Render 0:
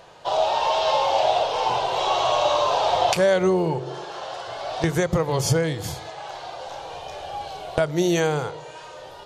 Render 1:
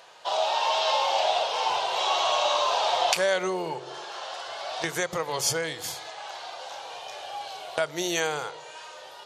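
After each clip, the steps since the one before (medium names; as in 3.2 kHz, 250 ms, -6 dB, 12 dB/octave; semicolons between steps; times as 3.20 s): high-pass 1.3 kHz 6 dB/octave; trim +1.5 dB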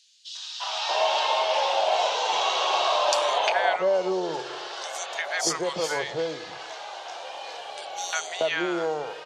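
three-band isolator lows -14 dB, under 190 Hz, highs -22 dB, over 8 kHz; three bands offset in time highs, mids, lows 350/630 ms, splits 1/3.8 kHz; trim +3.5 dB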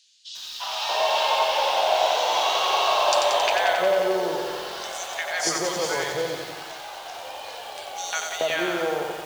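bit-crushed delay 90 ms, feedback 80%, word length 7-bit, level -5 dB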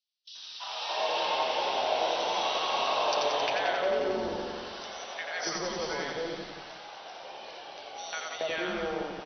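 gate with hold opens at -31 dBFS; FFT band-pass 130–6100 Hz; frequency-shifting echo 83 ms, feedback 30%, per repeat -150 Hz, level -7 dB; trim -8 dB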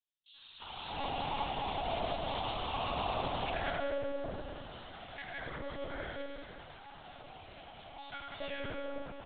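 on a send at -6.5 dB: reverberation RT60 2.2 s, pre-delay 3 ms; on the sum: monotone LPC vocoder at 8 kHz 280 Hz; trim -8 dB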